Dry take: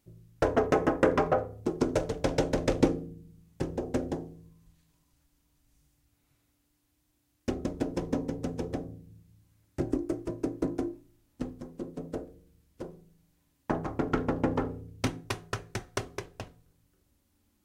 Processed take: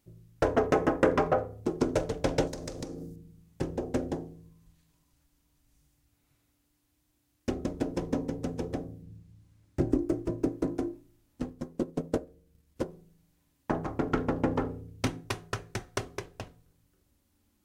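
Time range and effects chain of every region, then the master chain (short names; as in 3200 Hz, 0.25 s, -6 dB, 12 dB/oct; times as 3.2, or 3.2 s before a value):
2.47–3.16 resonant high shelf 3800 Hz +8.5 dB, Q 1.5 + compressor, threshold -35 dBFS
9.02–10.49 median filter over 3 samples + low shelf 390 Hz +5 dB
11.42–12.88 transient shaper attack +9 dB, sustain -5 dB + doubler 13 ms -12 dB
whole clip: dry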